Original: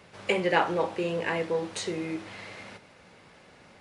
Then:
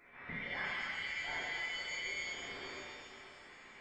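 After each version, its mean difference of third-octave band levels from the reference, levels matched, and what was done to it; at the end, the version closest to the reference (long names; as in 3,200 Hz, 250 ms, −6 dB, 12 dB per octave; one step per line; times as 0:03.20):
9.0 dB: downward compressor 2.5 to 1, threshold −40 dBFS, peak gain reduction 14.5 dB
flanger 1.9 Hz, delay 6.8 ms, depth 7.6 ms, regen −64%
voice inversion scrambler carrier 2,500 Hz
reverb with rising layers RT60 2.2 s, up +7 semitones, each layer −8 dB, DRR −7.5 dB
level −6 dB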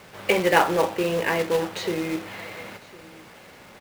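4.0 dB: low-pass filter 5,300 Hz
log-companded quantiser 4 bits
bass and treble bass −2 dB, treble −4 dB
single-tap delay 1,055 ms −22 dB
level +5.5 dB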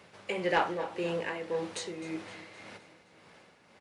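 2.0 dB: low-shelf EQ 77 Hz −11.5 dB
amplitude tremolo 1.8 Hz, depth 56%
soft clipping −15 dBFS, distortion −18 dB
repeating echo 259 ms, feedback 55%, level −16.5 dB
level −1.5 dB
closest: third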